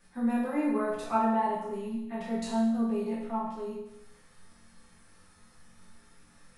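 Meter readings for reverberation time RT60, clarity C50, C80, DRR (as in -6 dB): 0.85 s, 1.5 dB, 4.5 dB, -8.5 dB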